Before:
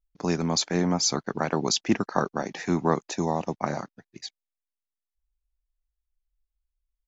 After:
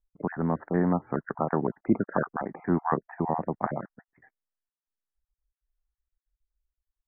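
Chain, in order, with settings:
time-frequency cells dropped at random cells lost 28%
Butterworth low-pass 1,900 Hz 72 dB per octave

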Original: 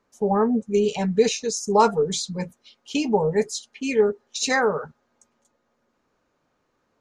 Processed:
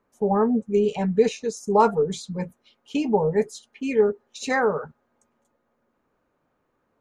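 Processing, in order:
parametric band 5,400 Hz −11.5 dB 1.7 octaves

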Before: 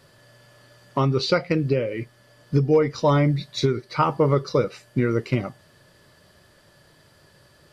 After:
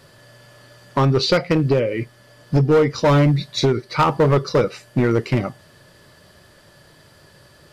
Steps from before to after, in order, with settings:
hard clipping −16 dBFS, distortion −13 dB
level +5.5 dB

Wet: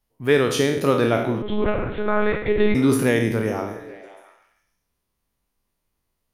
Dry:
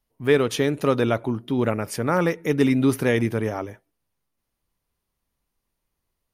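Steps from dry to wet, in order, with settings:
peak hold with a decay on every bin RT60 0.66 s
echo through a band-pass that steps 138 ms, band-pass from 180 Hz, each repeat 0.7 octaves, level −8 dB
0:01.42–0:02.75: one-pitch LPC vocoder at 8 kHz 210 Hz

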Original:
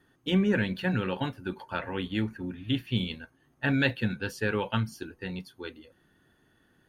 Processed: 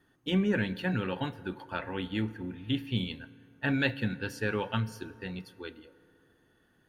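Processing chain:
feedback delay network reverb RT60 2.8 s, low-frequency decay 0.75×, high-frequency decay 0.45×, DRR 16 dB
level −2.5 dB

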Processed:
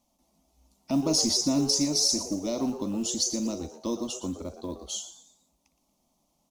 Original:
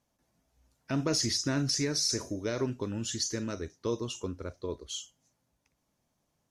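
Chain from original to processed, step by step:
dynamic equaliser 1,900 Hz, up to −7 dB, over −50 dBFS, Q 0.78
phaser with its sweep stopped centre 430 Hz, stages 6
floating-point word with a short mantissa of 4 bits
on a send: echo with shifted repeats 117 ms, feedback 38%, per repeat +140 Hz, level −12.5 dB
on the sum: level +7.5 dB

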